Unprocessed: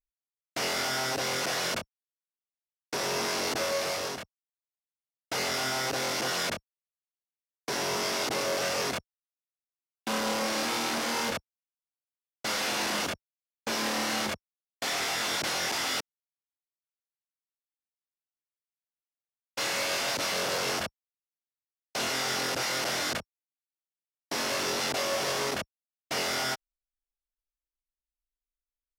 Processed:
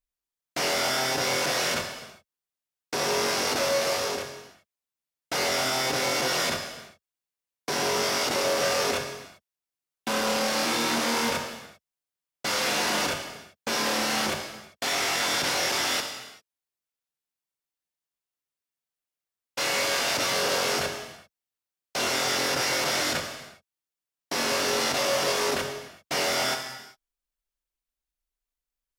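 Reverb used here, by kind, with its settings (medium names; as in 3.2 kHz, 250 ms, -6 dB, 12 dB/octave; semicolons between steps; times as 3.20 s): gated-style reverb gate 420 ms falling, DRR 3.5 dB; trim +2.5 dB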